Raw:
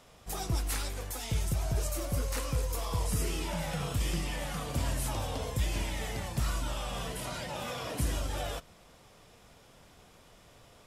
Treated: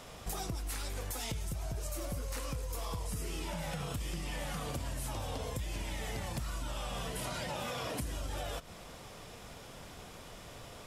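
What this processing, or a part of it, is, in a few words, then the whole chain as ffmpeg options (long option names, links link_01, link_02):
serial compression, peaks first: -af "acompressor=threshold=-40dB:ratio=6,acompressor=threshold=-45dB:ratio=2,volume=8dB"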